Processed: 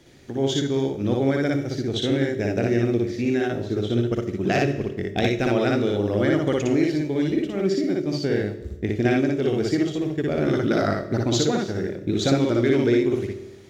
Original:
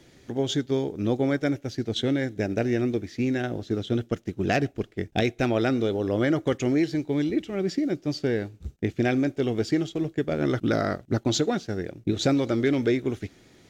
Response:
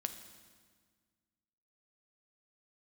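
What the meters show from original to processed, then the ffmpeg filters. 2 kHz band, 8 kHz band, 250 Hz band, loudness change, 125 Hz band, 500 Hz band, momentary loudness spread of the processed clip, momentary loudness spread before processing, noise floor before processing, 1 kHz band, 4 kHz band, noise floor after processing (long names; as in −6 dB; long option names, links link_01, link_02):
+3.0 dB, can't be measured, +3.0 dB, +3.5 dB, +3.5 dB, +4.0 dB, 6 LU, 6 LU, −57 dBFS, +3.0 dB, +3.0 dB, −37 dBFS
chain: -filter_complex "[0:a]asplit=2[link_01][link_02];[1:a]atrim=start_sample=2205,asetrate=79380,aresample=44100,adelay=59[link_03];[link_02][link_03]afir=irnorm=-1:irlink=0,volume=5.5dB[link_04];[link_01][link_04]amix=inputs=2:normalize=0"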